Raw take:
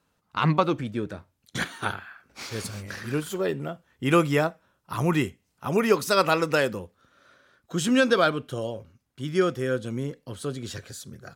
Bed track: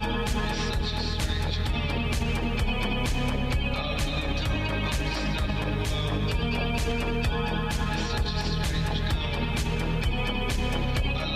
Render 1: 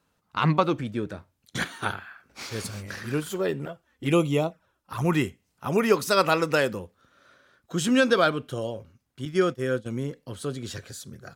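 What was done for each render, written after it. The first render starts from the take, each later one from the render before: 3.65–5.05 envelope flanger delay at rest 4.8 ms, full sweep at -20 dBFS; 9.25–9.86 expander -29 dBFS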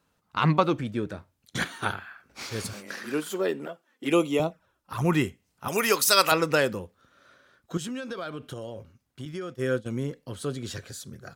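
2.73–4.4 HPF 210 Hz 24 dB/oct; 5.68–6.32 tilt +3.5 dB/oct; 7.77–9.55 compressor, threshold -32 dBFS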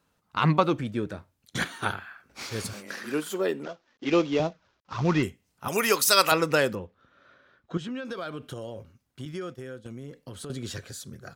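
3.63–5.23 CVSD 32 kbps; 6.75–8.05 LPF 3500 Hz; 9.55–10.5 compressor 8:1, threshold -35 dBFS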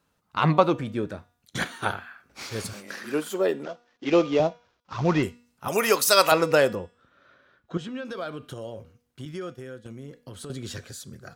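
de-hum 240.6 Hz, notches 38; dynamic EQ 630 Hz, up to +6 dB, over -38 dBFS, Q 1.3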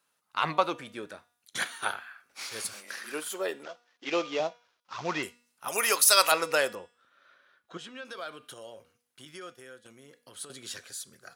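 HPF 1300 Hz 6 dB/oct; bell 10000 Hz +8 dB 0.23 oct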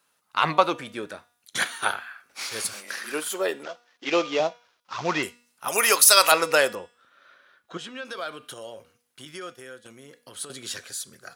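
gain +6 dB; limiter -1 dBFS, peak gain reduction 3 dB

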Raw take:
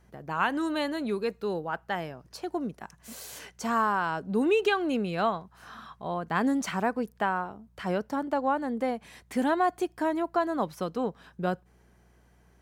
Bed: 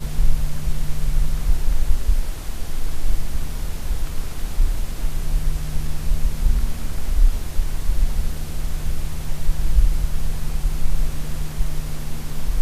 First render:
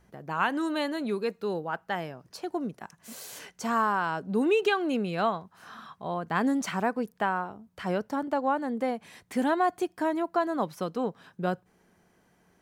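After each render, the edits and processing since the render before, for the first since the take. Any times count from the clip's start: de-hum 60 Hz, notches 2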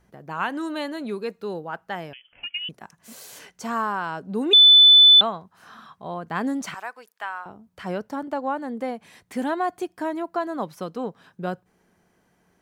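2.13–2.69 inverted band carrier 3200 Hz; 4.53–5.21 bleep 3500 Hz -8 dBFS; 6.74–7.46 HPF 1100 Hz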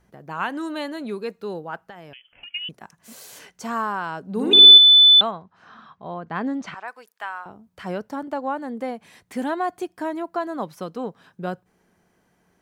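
1.84–2.48 compressor 16:1, threshold -36 dBFS; 4.3–4.78 flutter echo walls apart 10.1 m, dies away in 0.9 s; 5.31–6.88 air absorption 150 m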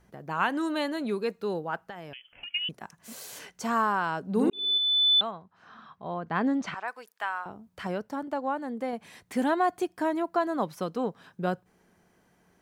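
4.5–6.44 fade in; 7.87–8.93 gain -3.5 dB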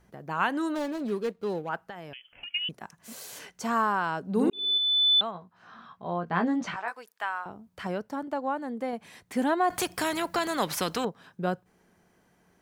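0.75–1.69 median filter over 25 samples; 5.33–6.95 doubler 17 ms -5 dB; 9.7–11.05 spectral compressor 2:1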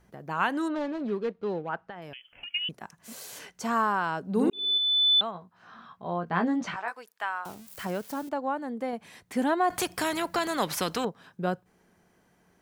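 0.68–2.02 Bessel low-pass 3100 Hz; 7.45–8.29 switching spikes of -35.5 dBFS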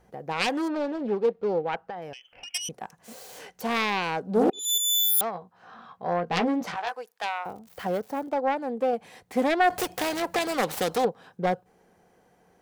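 self-modulated delay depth 0.46 ms; small resonant body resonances 500/750 Hz, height 10 dB, ringing for 25 ms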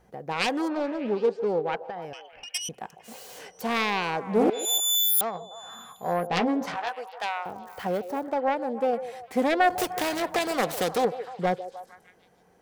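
delay with a stepping band-pass 0.151 s, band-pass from 520 Hz, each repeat 0.7 oct, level -10 dB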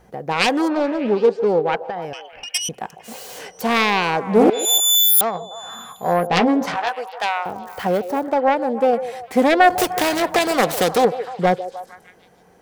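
gain +8.5 dB

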